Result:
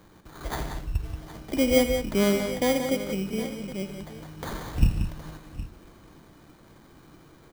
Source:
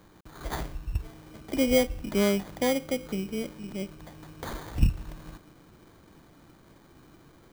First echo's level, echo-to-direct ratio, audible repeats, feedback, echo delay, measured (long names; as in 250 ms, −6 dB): −11.5 dB, −5.5 dB, 4, repeats not evenly spaced, 83 ms